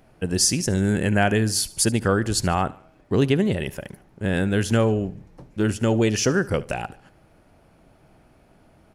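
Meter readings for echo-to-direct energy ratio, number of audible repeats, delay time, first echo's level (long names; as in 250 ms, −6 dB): −19.0 dB, 3, 73 ms, −20.0 dB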